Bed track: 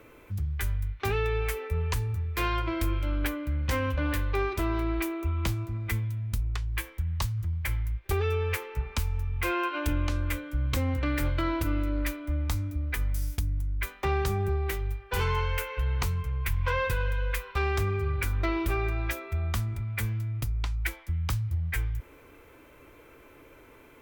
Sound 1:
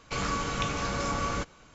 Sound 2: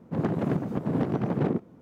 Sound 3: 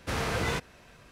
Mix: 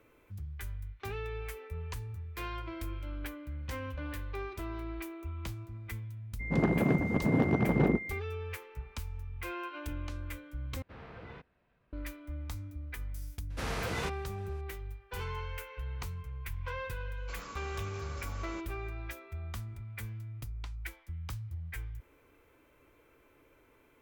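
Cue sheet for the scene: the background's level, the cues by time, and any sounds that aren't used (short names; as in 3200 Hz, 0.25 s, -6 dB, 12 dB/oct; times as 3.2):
bed track -11 dB
6.39 add 2 -0.5 dB, fades 0.02 s + whine 2100 Hz -38 dBFS
10.82 replace with 3 -17 dB + air absorption 370 m
13.5 add 3 -5.5 dB
17.17 add 1 -15 dB + low shelf 240 Hz -7 dB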